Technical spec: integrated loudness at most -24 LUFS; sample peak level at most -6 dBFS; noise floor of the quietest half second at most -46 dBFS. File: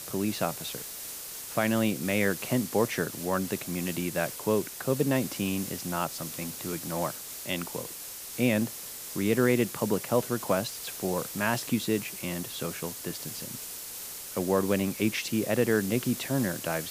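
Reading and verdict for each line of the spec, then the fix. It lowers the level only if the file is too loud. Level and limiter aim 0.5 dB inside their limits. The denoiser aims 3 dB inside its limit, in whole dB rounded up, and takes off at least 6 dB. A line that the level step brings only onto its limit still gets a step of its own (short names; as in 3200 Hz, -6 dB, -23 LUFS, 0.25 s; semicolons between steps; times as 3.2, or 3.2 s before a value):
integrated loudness -29.5 LUFS: OK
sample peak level -12.0 dBFS: OK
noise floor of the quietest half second -41 dBFS: fail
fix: denoiser 8 dB, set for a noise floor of -41 dBFS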